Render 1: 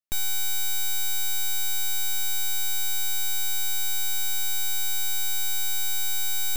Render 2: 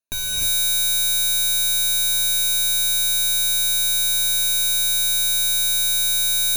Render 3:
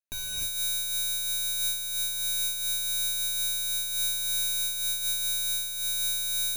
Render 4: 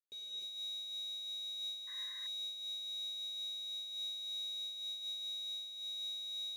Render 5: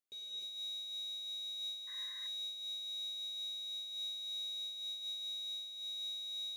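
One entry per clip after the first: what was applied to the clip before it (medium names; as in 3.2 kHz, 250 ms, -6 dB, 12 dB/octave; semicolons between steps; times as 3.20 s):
rippled EQ curve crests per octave 1.5, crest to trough 14 dB; gated-style reverb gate 340 ms rising, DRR -3.5 dB
in parallel at -10.5 dB: saturation -25 dBFS, distortion -9 dB; on the sum: random flutter of the level, depth 60%; trim -8 dB
painted sound noise, 1.87–2.27 s, 1–2.1 kHz -26 dBFS; two resonant band-passes 1.3 kHz, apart 2.9 oct; trim -3.5 dB
de-hum 90.36 Hz, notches 27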